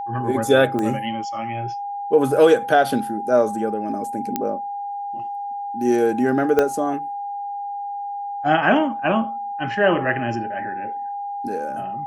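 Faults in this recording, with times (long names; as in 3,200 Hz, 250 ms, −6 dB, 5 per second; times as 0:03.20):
whistle 810 Hz −26 dBFS
0:00.79: click −13 dBFS
0:04.36: click −8 dBFS
0:06.59: click −6 dBFS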